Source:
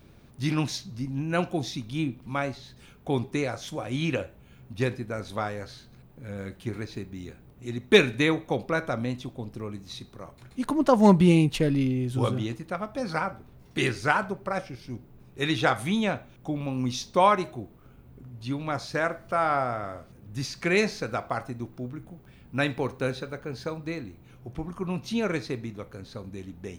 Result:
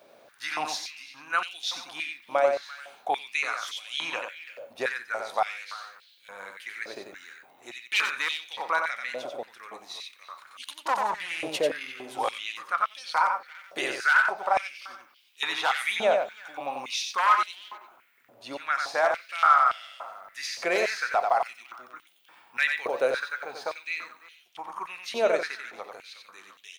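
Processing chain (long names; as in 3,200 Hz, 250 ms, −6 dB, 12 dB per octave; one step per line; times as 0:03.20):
wavefolder on the positive side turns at −15.5 dBFS
brickwall limiter −17.5 dBFS, peak gain reduction 11.5 dB
far-end echo of a speakerphone 340 ms, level −14 dB
mains hum 60 Hz, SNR 23 dB
on a send: single-tap delay 91 ms −5 dB
on the sum: high-pass on a step sequencer 3.5 Hz 600–3,100 Hz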